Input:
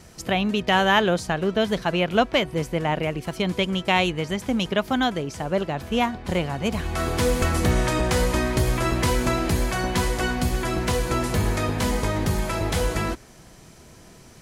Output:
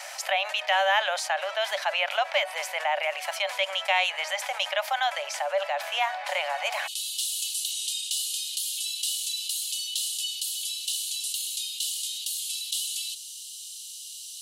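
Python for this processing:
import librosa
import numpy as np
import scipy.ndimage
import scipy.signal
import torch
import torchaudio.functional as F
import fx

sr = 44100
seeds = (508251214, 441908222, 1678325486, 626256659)

y = fx.cheby_ripple_highpass(x, sr, hz=fx.steps((0.0, 560.0), (6.86, 2800.0)), ripple_db=6)
y = fx.env_flatten(y, sr, amount_pct=50)
y = y * librosa.db_to_amplitude(-2.0)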